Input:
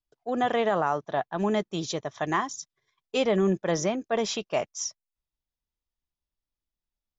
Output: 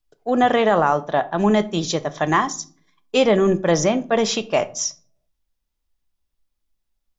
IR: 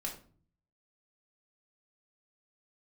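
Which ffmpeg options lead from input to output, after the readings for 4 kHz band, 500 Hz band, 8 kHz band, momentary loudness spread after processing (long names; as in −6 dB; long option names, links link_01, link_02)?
+8.0 dB, +8.0 dB, can't be measured, 8 LU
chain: -filter_complex "[0:a]asplit=2[link_01][link_02];[1:a]atrim=start_sample=2205,lowshelf=frequency=73:gain=11.5[link_03];[link_02][link_03]afir=irnorm=-1:irlink=0,volume=-8.5dB[link_04];[link_01][link_04]amix=inputs=2:normalize=0,volume=6dB"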